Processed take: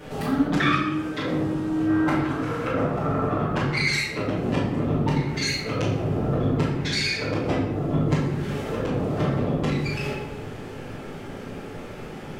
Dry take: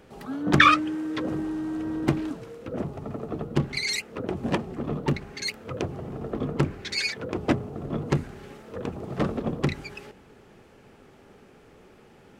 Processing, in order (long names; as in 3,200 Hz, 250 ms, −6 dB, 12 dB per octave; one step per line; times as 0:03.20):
0:01.88–0:03.97: parametric band 1,300 Hz +12 dB 1.7 octaves
downward compressor 4 to 1, threshold −39 dBFS, peak gain reduction 22 dB
convolution reverb RT60 1.1 s, pre-delay 7 ms, DRR −9.5 dB
level +5.5 dB